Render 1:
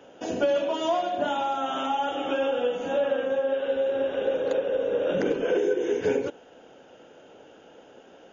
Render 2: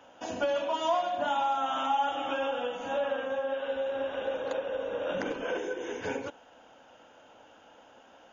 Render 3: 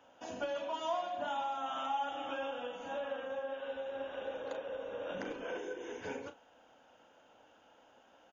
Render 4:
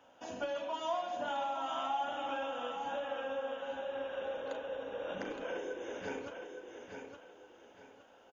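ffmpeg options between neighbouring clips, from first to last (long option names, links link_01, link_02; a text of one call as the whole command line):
ffmpeg -i in.wav -af "equalizer=frequency=160:width_type=o:width=0.67:gain=-8,equalizer=frequency=400:width_type=o:width=0.67:gain=-12,equalizer=frequency=1000:width_type=o:width=0.67:gain=6,volume=-2.5dB" out.wav
ffmpeg -i in.wav -filter_complex "[0:a]asplit=2[link_01][link_02];[link_02]adelay=36,volume=-11dB[link_03];[link_01][link_03]amix=inputs=2:normalize=0,volume=-8dB" out.wav
ffmpeg -i in.wav -af "aecho=1:1:866|1732|2598|3464:0.473|0.142|0.0426|0.0128" out.wav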